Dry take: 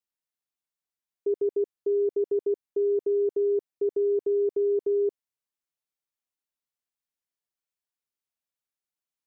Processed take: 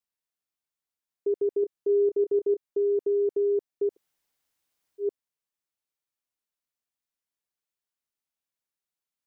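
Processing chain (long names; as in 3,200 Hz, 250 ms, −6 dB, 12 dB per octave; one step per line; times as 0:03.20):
0:01.60–0:02.68: double-tracking delay 27 ms −9.5 dB
0:03.92–0:05.03: fill with room tone, crossfade 0.10 s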